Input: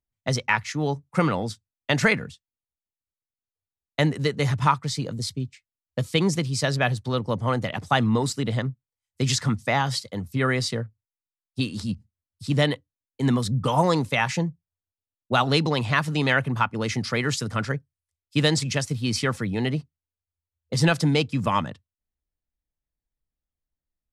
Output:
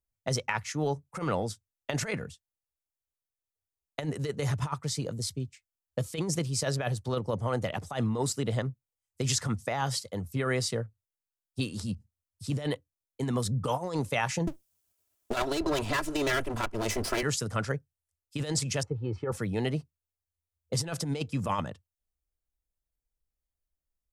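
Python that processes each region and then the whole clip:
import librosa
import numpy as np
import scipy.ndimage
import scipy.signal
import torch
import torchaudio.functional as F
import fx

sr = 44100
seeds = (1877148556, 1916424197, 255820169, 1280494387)

y = fx.chain(x, sr, fx.lower_of_two(delay_ms=3.0),
    fx.band_squash(depth_pct=70), at=(14.47, 17.23))
y = fx.chain(y, sr, fx.cheby1_lowpass(hz=870.0, order=2),
    fx.comb(ms=2.3, depth=0.63), at=(18.83, 19.32))
y = fx.graphic_eq(y, sr, hz=(125, 250, 1000, 2000, 4000), db=(-5, -7, -4, -6, -7))
y = fx.over_compress(y, sr, threshold_db=-28.0, ratio=-0.5)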